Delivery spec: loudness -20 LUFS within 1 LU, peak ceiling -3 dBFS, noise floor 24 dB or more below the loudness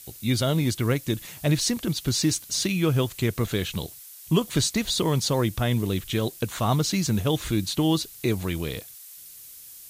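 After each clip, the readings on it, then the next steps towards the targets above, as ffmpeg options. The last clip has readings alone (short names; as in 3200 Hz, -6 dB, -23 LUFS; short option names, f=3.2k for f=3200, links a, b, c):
noise floor -45 dBFS; noise floor target -49 dBFS; loudness -25.0 LUFS; peak -9.5 dBFS; loudness target -20.0 LUFS
-> -af "afftdn=nr=6:nf=-45"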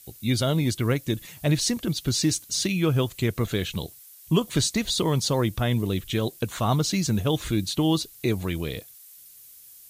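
noise floor -49 dBFS; noise floor target -50 dBFS
-> -af "afftdn=nr=6:nf=-49"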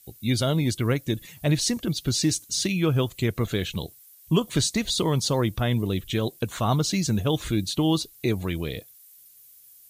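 noise floor -52 dBFS; loudness -25.5 LUFS; peak -9.5 dBFS; loudness target -20.0 LUFS
-> -af "volume=5.5dB"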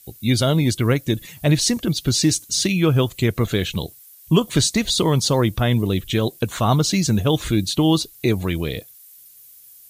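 loudness -20.0 LUFS; peak -4.0 dBFS; noise floor -47 dBFS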